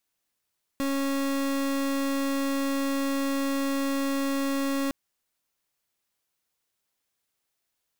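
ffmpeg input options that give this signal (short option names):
-f lavfi -i "aevalsrc='0.0447*(2*lt(mod(275*t,1),0.36)-1)':d=4.11:s=44100"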